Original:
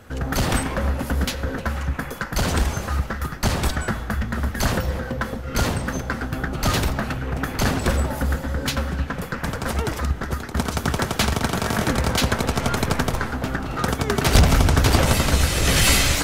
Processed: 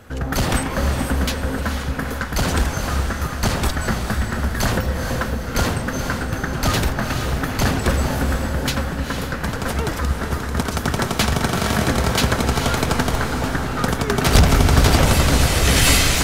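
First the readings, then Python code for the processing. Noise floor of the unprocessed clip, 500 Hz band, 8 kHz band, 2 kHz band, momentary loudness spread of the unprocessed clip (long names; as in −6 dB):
−32 dBFS, +2.5 dB, +2.5 dB, +2.5 dB, 10 LU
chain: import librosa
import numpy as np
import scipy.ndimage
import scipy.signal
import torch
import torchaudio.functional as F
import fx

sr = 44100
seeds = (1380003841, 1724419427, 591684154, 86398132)

p1 = x + fx.echo_diffused(x, sr, ms=466, feedback_pct=46, wet_db=-6, dry=0)
y = p1 * 10.0 ** (1.5 / 20.0)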